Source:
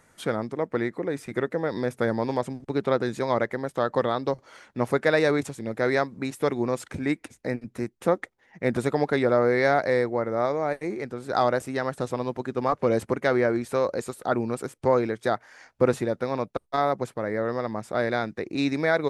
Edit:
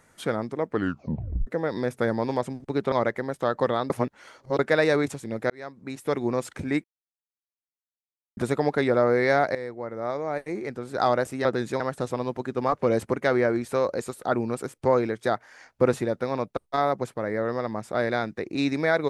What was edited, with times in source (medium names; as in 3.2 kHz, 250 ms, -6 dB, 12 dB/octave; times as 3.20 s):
0.70 s: tape stop 0.77 s
2.92–3.27 s: move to 11.80 s
4.25–4.94 s: reverse
5.85–6.59 s: fade in linear
7.19–8.72 s: mute
9.90–11.06 s: fade in, from -13.5 dB